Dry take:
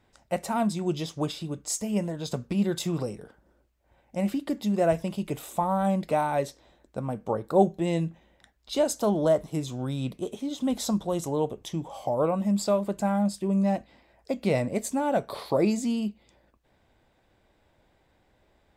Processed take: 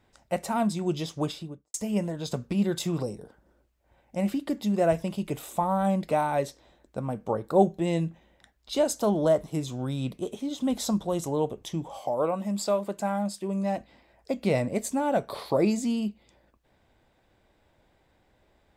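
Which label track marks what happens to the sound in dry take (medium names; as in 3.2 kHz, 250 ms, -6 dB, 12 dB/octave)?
1.260000	1.740000	studio fade out
3.020000	3.310000	time-frequency box 1.1–3.5 kHz -7 dB
11.990000	13.770000	high-pass 310 Hz 6 dB/octave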